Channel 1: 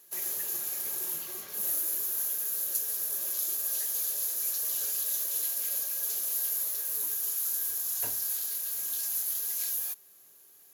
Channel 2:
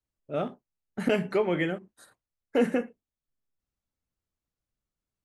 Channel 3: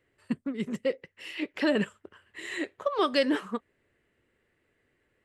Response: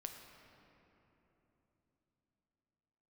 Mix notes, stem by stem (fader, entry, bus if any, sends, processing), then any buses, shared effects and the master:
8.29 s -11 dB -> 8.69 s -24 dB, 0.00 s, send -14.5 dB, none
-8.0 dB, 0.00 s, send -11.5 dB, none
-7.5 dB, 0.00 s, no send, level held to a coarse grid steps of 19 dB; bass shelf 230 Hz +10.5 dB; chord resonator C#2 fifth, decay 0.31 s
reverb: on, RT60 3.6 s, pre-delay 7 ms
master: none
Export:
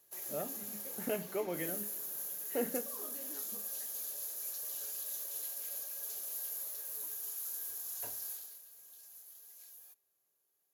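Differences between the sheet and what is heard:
stem 2 -8.0 dB -> -15.5 dB; master: extra peaking EQ 640 Hz +5.5 dB 1.3 oct

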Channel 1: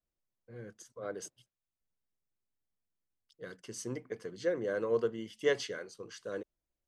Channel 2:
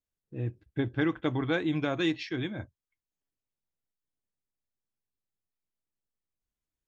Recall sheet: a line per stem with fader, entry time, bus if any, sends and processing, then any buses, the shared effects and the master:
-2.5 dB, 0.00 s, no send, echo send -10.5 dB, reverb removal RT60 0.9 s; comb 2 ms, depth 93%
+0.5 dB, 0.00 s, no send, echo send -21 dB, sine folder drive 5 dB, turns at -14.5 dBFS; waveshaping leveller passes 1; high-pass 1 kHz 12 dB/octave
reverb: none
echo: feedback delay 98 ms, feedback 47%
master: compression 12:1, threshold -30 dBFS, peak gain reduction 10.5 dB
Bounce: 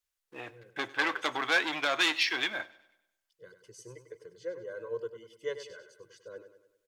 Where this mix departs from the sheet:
stem 1 -2.5 dB -> -11.0 dB; master: missing compression 12:1, threshold -30 dBFS, peak gain reduction 10.5 dB

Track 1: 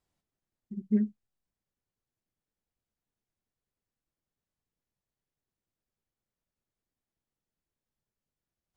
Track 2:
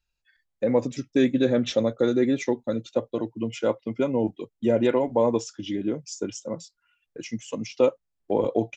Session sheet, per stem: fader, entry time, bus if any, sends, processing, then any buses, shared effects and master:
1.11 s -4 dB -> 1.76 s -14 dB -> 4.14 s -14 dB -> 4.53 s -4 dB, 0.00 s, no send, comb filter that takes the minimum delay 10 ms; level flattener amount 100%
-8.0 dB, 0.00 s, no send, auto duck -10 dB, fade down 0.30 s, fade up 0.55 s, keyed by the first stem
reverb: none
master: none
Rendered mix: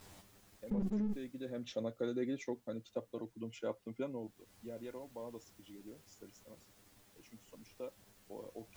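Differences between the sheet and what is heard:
stem 1 -4.0 dB -> -12.0 dB; stem 2 -8.0 dB -> -15.5 dB

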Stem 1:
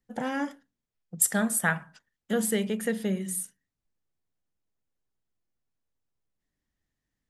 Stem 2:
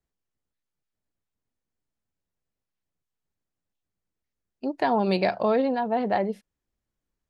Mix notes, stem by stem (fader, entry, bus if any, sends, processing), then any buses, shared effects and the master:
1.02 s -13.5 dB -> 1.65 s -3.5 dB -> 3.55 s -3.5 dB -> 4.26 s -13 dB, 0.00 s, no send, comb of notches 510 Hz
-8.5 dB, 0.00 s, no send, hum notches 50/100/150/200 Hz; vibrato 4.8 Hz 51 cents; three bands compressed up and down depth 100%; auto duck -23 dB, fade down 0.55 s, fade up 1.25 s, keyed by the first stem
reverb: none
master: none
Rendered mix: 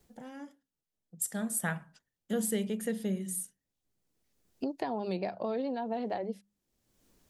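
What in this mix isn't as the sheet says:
stem 1: missing comb of notches 510 Hz; master: extra peaking EQ 1.5 kHz -6.5 dB 2.1 oct

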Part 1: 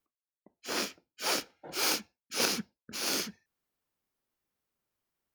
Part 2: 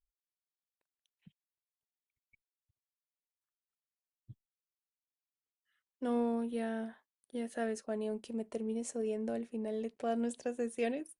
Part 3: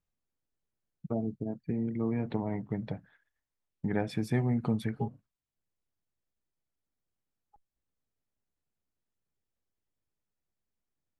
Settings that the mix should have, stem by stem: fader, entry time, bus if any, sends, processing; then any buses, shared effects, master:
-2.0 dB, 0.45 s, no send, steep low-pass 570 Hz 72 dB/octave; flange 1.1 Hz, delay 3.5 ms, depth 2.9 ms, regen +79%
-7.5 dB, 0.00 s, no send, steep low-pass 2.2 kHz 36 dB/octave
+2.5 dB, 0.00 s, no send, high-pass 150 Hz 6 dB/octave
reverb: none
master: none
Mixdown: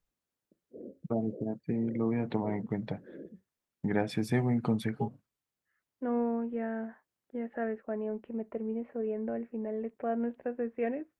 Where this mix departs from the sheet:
stem 1: entry 0.45 s -> 0.05 s; stem 2 -7.5 dB -> +2.0 dB

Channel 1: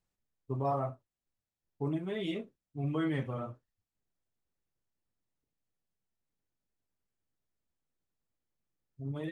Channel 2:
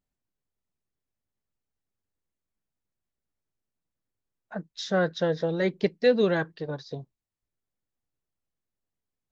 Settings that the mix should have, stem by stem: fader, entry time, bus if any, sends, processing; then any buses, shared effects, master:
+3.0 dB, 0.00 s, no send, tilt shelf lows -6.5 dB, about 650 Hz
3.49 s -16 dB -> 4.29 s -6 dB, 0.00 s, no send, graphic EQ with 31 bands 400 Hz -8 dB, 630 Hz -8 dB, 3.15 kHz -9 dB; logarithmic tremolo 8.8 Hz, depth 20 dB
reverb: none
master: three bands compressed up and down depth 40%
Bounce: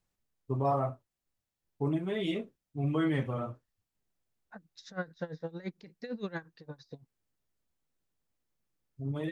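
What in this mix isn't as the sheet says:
stem 1: missing tilt shelf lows -6.5 dB, about 650 Hz; master: missing three bands compressed up and down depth 40%

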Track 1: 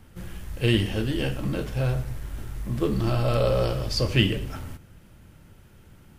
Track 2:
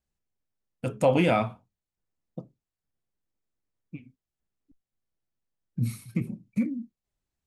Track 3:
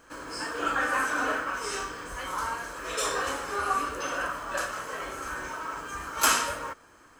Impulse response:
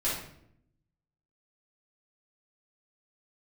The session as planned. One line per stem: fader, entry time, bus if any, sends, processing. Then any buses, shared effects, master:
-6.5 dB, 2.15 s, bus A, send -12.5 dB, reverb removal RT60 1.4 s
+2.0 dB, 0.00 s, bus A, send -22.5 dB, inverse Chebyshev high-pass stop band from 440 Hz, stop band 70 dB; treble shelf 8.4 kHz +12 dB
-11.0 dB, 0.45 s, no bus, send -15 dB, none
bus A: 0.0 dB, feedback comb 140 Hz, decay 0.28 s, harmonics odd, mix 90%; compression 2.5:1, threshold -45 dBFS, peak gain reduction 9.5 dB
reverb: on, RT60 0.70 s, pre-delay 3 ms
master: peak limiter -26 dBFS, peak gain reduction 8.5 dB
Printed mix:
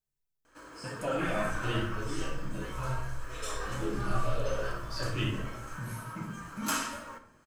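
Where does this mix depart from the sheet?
stem 1: entry 2.15 s -> 1.00 s; stem 2: missing inverse Chebyshev high-pass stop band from 440 Hz, stop band 70 dB; master: missing peak limiter -26 dBFS, peak gain reduction 8.5 dB

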